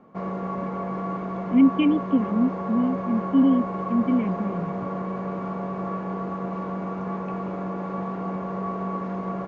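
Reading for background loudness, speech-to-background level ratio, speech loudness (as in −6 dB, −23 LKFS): −30.0 LKFS, 7.0 dB, −23.0 LKFS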